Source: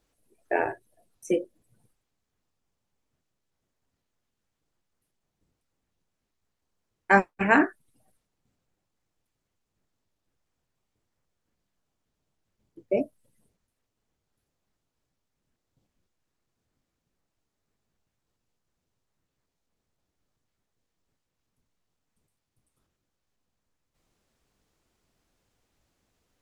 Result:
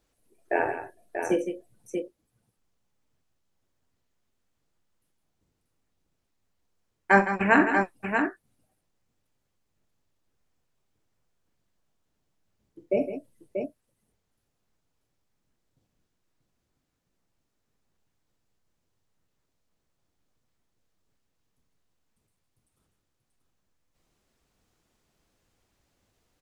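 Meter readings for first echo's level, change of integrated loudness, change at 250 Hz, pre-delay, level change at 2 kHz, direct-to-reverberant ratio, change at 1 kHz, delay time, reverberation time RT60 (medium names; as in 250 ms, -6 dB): -14.0 dB, -1.0 dB, +1.5 dB, no reverb, +1.5 dB, no reverb, +1.5 dB, 46 ms, no reverb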